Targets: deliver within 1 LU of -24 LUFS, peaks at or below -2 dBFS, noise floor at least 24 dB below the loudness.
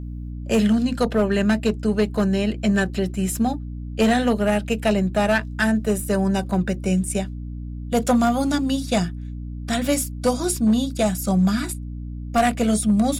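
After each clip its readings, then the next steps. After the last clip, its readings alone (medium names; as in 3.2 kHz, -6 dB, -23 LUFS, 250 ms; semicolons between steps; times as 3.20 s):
clipped samples 1.1%; clipping level -12.0 dBFS; hum 60 Hz; highest harmonic 300 Hz; hum level -29 dBFS; loudness -21.5 LUFS; peak level -12.0 dBFS; loudness target -24.0 LUFS
-> clip repair -12 dBFS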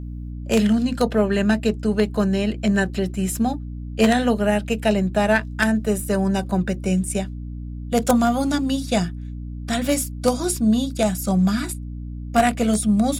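clipped samples 0.0%; hum 60 Hz; highest harmonic 300 Hz; hum level -29 dBFS
-> hum notches 60/120/180/240/300 Hz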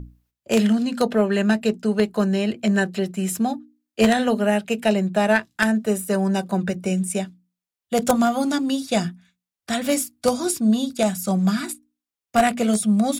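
hum not found; loudness -21.5 LUFS; peak level -2.5 dBFS; loudness target -24.0 LUFS
-> trim -2.5 dB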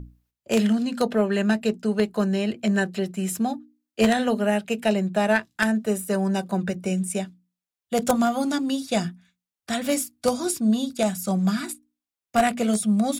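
loudness -24.0 LUFS; peak level -5.0 dBFS; noise floor -90 dBFS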